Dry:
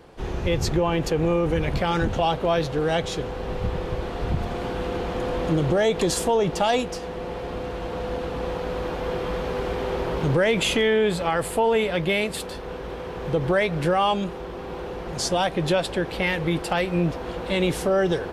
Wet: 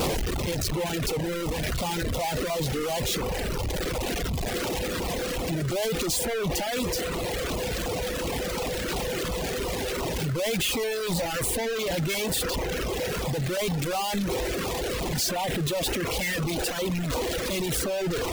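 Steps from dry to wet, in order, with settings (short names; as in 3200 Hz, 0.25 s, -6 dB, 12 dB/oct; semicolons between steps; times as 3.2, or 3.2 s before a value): infinite clipping; reverb removal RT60 1.9 s; LFO notch saw down 2.8 Hz 740–1800 Hz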